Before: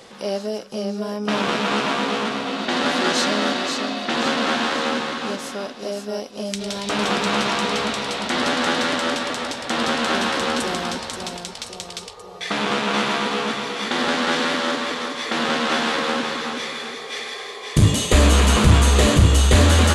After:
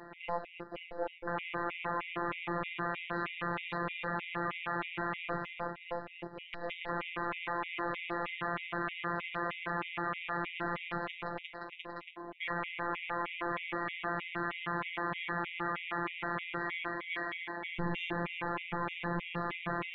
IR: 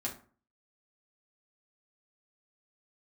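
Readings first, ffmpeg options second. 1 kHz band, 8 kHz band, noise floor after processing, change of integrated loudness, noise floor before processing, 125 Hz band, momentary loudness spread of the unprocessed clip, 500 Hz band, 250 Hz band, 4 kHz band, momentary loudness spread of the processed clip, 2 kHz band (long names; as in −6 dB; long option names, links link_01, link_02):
−12.5 dB, below −40 dB, −52 dBFS, −16.5 dB, −37 dBFS, −23.5 dB, 14 LU, −16.5 dB, −18.0 dB, −23.0 dB, 6 LU, −12.0 dB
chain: -filter_complex "[0:a]acrossover=split=110|960[link_01][link_02][link_03];[link_02]aeval=exprs='max(val(0),0)':channel_layout=same[link_04];[link_01][link_04][link_03]amix=inputs=3:normalize=0,highpass=frequency=210:width_type=q:width=0.5412,highpass=frequency=210:width_type=q:width=1.307,lowpass=frequency=2700:width_type=q:width=0.5176,lowpass=frequency=2700:width_type=q:width=0.7071,lowpass=frequency=2700:width_type=q:width=1.932,afreqshift=-140,afftfilt=real='hypot(re,im)*cos(PI*b)':imag='0':win_size=1024:overlap=0.75,alimiter=limit=-22.5dB:level=0:latency=1:release=11,bandreject=frequency=50:width_type=h:width=6,bandreject=frequency=100:width_type=h:width=6,bandreject=frequency=150:width_type=h:width=6,bandreject=frequency=200:width_type=h:width=6,bandreject=frequency=250:width_type=h:width=6,bandreject=frequency=300:width_type=h:width=6,afftfilt=real='re*gt(sin(2*PI*3.2*pts/sr)*(1-2*mod(floor(b*sr/1024/1900),2)),0)':imag='im*gt(sin(2*PI*3.2*pts/sr)*(1-2*mod(floor(b*sr/1024/1900),2)),0)':win_size=1024:overlap=0.75,volume=3dB"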